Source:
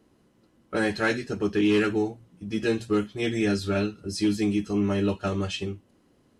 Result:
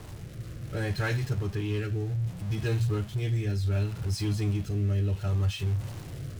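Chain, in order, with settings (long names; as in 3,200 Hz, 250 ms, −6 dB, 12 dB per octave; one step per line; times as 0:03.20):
converter with a step at zero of −30.5 dBFS
low shelf with overshoot 170 Hz +10.5 dB, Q 3
rotating-speaker cabinet horn 0.65 Hz
level −7.5 dB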